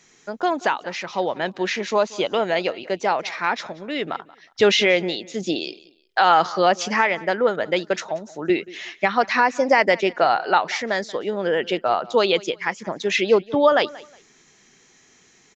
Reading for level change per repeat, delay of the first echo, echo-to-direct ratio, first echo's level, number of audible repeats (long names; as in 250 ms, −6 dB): −12.0 dB, 182 ms, −20.5 dB, −21.0 dB, 2